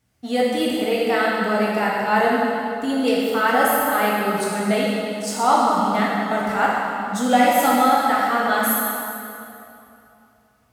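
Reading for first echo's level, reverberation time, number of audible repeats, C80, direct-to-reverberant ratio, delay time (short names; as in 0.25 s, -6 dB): none, 2.7 s, none, -1.0 dB, -6.0 dB, none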